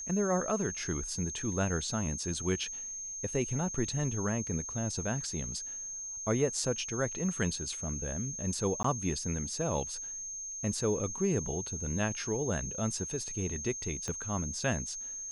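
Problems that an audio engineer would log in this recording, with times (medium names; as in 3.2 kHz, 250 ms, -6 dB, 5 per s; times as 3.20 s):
whine 6.4 kHz -38 dBFS
8.83–8.84 s: dropout 14 ms
14.08 s: pop -23 dBFS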